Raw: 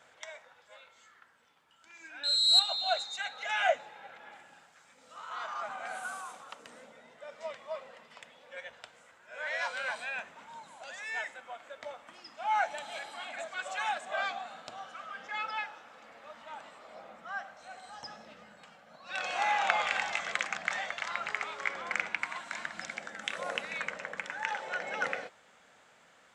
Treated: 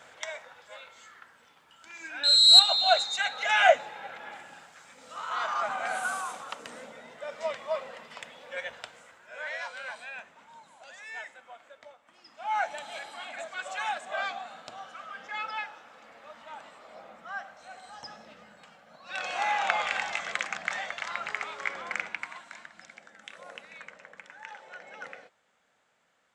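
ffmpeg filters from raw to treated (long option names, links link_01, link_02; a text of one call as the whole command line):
ffmpeg -i in.wav -af "volume=20.5dB,afade=type=out:start_time=8.72:duration=0.93:silence=0.251189,afade=type=out:start_time=11.62:duration=0.39:silence=0.421697,afade=type=in:start_time=12.01:duration=0.65:silence=0.237137,afade=type=out:start_time=21.78:duration=0.91:silence=0.281838" out.wav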